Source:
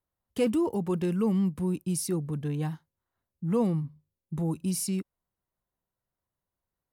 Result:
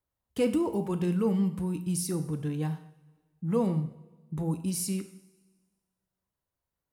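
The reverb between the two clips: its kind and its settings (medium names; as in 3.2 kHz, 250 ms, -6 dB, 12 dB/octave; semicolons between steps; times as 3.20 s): two-slope reverb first 0.59 s, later 1.6 s, from -16 dB, DRR 7.5 dB; trim -1 dB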